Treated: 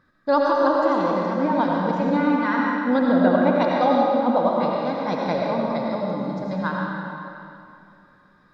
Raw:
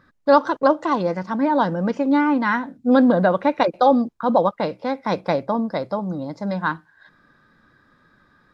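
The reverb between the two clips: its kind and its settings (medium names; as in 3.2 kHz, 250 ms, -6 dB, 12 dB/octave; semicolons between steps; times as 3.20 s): algorithmic reverb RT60 2.6 s, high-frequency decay 0.85×, pre-delay 45 ms, DRR -3 dB; trim -5.5 dB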